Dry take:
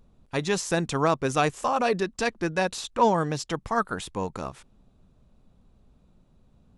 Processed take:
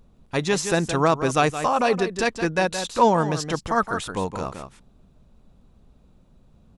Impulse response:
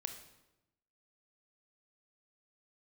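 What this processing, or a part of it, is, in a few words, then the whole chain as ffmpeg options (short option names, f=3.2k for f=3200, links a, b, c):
ducked delay: -filter_complex "[0:a]asplit=3[a][b][c];[b]adelay=169,volume=-7dB[d];[c]apad=whole_len=306348[e];[d][e]sidechaincompress=threshold=-26dB:ratio=8:attack=28:release=348[f];[a][f]amix=inputs=2:normalize=0,volume=3.5dB"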